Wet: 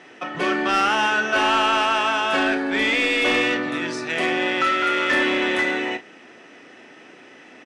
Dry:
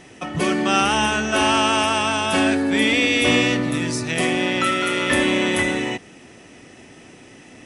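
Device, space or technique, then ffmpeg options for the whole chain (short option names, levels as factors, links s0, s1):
intercom: -filter_complex "[0:a]highpass=310,lowpass=4100,equalizer=f=1500:t=o:w=0.56:g=5.5,asoftclip=type=tanh:threshold=0.237,asplit=2[s0][s1];[s1]adelay=35,volume=0.282[s2];[s0][s2]amix=inputs=2:normalize=0"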